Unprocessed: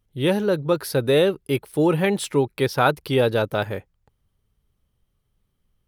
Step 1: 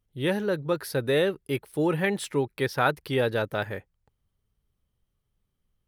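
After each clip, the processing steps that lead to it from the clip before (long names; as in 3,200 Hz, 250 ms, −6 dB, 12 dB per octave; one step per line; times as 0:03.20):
dynamic equaliser 1,800 Hz, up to +7 dB, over −44 dBFS, Q 2.9
level −6 dB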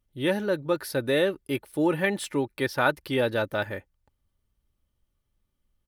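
comb filter 3.4 ms, depth 37%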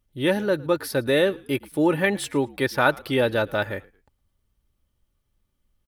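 echo with shifted repeats 111 ms, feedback 31%, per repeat −61 Hz, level −23.5 dB
level +3.5 dB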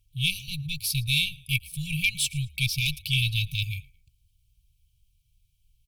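harmonic generator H 6 −24 dB, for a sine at −4 dBFS
linear-phase brick-wall band-stop 160–2,200 Hz
level +6 dB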